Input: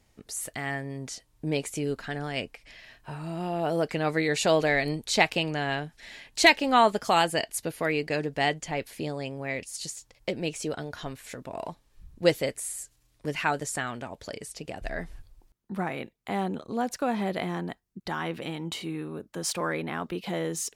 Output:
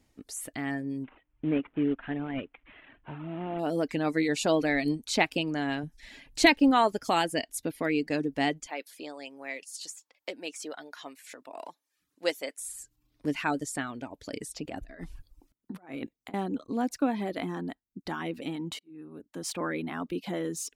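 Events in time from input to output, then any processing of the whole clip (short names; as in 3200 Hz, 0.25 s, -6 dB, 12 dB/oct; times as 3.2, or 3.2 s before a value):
1.04–3.59 CVSD 16 kbps
5.83–6.71 low shelf 120 Hz +11 dB
8.67–12.61 HPF 600 Hz
14.33–16.34 negative-ratio compressor -37 dBFS, ratio -0.5
18.79–19.65 fade in
whole clip: bell 280 Hz +12 dB 0.43 oct; reverb removal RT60 0.57 s; gain -3.5 dB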